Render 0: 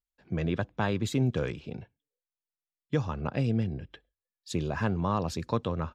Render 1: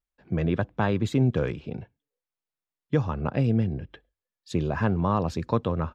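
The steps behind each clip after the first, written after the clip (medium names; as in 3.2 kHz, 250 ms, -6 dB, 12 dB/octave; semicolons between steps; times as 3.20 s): treble shelf 3.5 kHz -11 dB; trim +4.5 dB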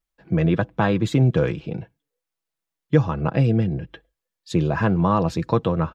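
comb 6.1 ms, depth 42%; trim +4.5 dB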